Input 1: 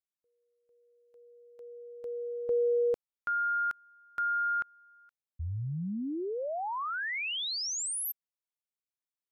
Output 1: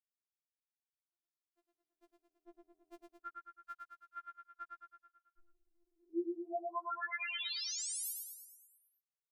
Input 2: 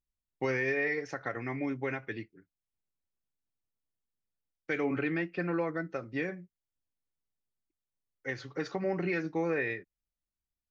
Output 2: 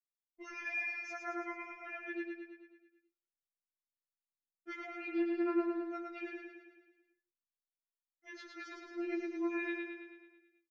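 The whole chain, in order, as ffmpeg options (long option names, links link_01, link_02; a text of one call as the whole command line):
ffmpeg -i in.wav -filter_complex "[0:a]agate=range=-33dB:threshold=-53dB:ratio=3:release=360:detection=peak,asplit=2[link_01][link_02];[link_02]aecho=0:1:109|218|327|436|545|654|763|872:0.668|0.381|0.217|0.124|0.0706|0.0402|0.0229|0.0131[link_03];[link_01][link_03]amix=inputs=2:normalize=0,afftfilt=real='re*4*eq(mod(b,16),0)':imag='im*4*eq(mod(b,16),0)':win_size=2048:overlap=0.75,volume=-6dB" out.wav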